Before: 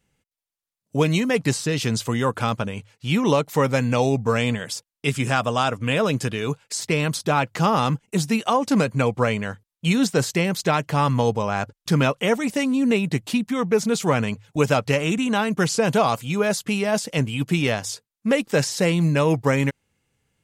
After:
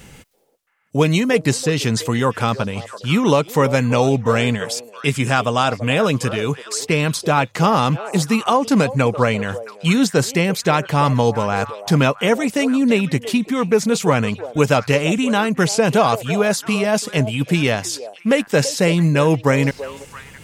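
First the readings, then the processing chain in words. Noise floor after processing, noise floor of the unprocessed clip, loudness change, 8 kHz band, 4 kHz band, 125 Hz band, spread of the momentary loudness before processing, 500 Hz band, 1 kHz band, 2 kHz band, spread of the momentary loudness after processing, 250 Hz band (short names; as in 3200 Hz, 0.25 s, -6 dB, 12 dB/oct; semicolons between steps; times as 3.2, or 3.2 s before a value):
-44 dBFS, under -85 dBFS, +4.0 dB, +4.0 dB, +4.0 dB, +4.0 dB, 7 LU, +4.5 dB, +4.0 dB, +4.0 dB, 7 LU, +4.0 dB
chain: reverse; upward compressor, threshold -26 dBFS; reverse; delay with a stepping band-pass 0.335 s, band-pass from 540 Hz, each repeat 1.4 oct, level -10 dB; gain +4 dB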